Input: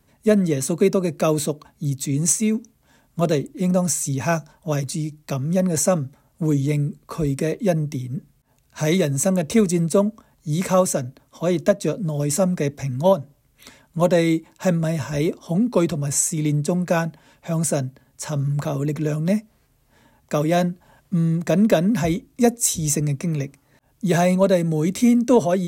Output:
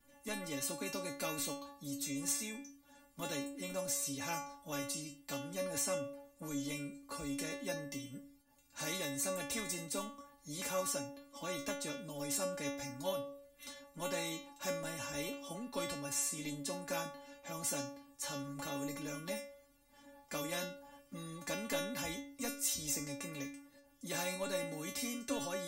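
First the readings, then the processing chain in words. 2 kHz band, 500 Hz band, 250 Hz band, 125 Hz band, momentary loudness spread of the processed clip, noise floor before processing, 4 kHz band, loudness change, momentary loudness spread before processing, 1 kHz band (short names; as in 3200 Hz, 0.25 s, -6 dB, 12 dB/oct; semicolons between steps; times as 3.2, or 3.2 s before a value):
-11.5 dB, -20.5 dB, -22.5 dB, -28.0 dB, 11 LU, -62 dBFS, -8.0 dB, -18.5 dB, 9 LU, -16.0 dB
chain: metallic resonator 280 Hz, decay 0.43 s, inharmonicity 0.002; spectral compressor 2:1; gain -5 dB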